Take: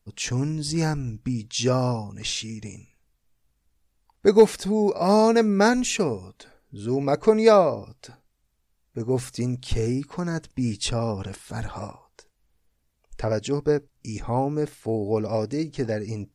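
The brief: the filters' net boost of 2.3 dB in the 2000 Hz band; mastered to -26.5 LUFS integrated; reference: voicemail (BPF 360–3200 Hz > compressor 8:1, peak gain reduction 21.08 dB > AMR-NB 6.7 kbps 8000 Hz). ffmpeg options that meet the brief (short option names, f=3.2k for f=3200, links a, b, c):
-af "highpass=360,lowpass=3.2k,equalizer=f=2k:t=o:g=4,acompressor=threshold=-32dB:ratio=8,volume=12.5dB" -ar 8000 -c:a libopencore_amrnb -b:a 6700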